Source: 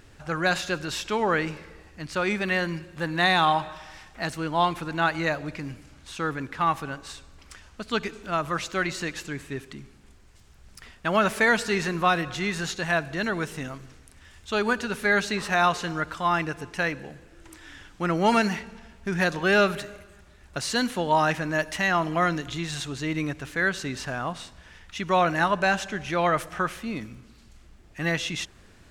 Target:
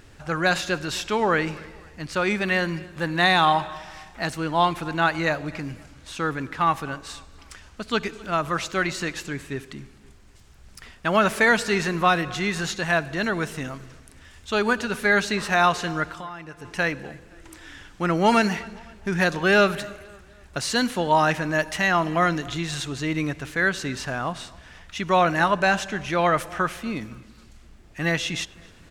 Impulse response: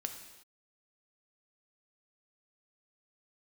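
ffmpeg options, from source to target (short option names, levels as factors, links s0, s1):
-filter_complex "[0:a]asettb=1/sr,asplit=3[s0][s1][s2];[s0]atrim=end=16.044[s3];[s1]atrim=start=16.04:end=16.65,asetpts=PTS-STARTPTS,afade=t=in:d=0.004:c=qsin,afade=t=out:st=0.606:d=0.004:c=qsin,acompressor=threshold=0.0141:ratio=8[s4];[s2]atrim=start=16.646[s5];[s3][s4]acrossfade=d=0.004:c1=hsin:c2=qsin[s6];[s6][s5]acrossfade=d=0.004:c1=qsin:c2=hsin,asplit=2[s7][s8];[s8]adelay=258,lowpass=f=4000:p=1,volume=0.075,asplit=2[s9][s10];[s10]adelay=258,lowpass=f=4000:p=1,volume=0.42,asplit=2[s11][s12];[s12]adelay=258,lowpass=f=4000:p=1,volume=0.42[s13];[s9][s11][s13]amix=inputs=3:normalize=0[s14];[s7][s14]amix=inputs=2:normalize=0,volume=1.33"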